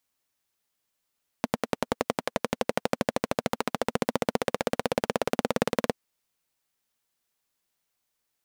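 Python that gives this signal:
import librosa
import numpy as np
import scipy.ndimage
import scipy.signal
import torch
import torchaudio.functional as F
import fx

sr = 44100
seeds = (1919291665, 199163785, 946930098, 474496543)

y = fx.engine_single_rev(sr, seeds[0], length_s=4.49, rpm=1200, resonances_hz=(240.0, 480.0), end_rpm=2200)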